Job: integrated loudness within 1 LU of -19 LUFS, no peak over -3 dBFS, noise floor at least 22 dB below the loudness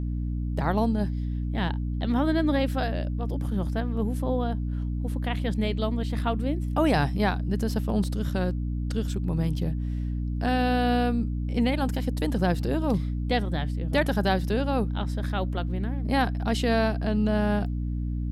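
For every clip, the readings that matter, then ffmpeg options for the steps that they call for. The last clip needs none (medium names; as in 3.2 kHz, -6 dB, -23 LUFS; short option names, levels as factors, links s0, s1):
hum 60 Hz; highest harmonic 300 Hz; hum level -26 dBFS; loudness -27.0 LUFS; peak level -10.0 dBFS; loudness target -19.0 LUFS
-> -af "bandreject=f=60:t=h:w=6,bandreject=f=120:t=h:w=6,bandreject=f=180:t=h:w=6,bandreject=f=240:t=h:w=6,bandreject=f=300:t=h:w=6"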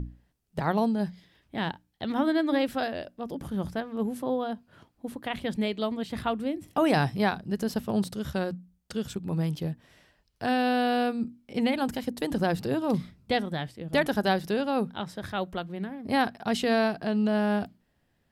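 hum not found; loudness -29.0 LUFS; peak level -11.0 dBFS; loudness target -19.0 LUFS
-> -af "volume=3.16,alimiter=limit=0.708:level=0:latency=1"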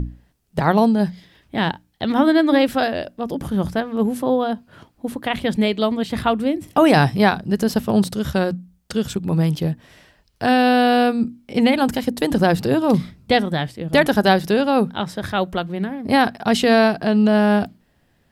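loudness -19.0 LUFS; peak level -3.0 dBFS; noise floor -62 dBFS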